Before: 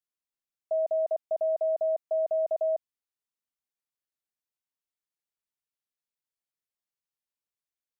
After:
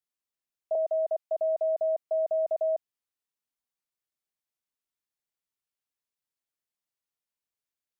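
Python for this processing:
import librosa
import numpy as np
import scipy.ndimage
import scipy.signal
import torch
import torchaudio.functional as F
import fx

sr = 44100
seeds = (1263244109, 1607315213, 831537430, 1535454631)

y = fx.highpass(x, sr, hz=460.0, slope=24, at=(0.75, 1.37))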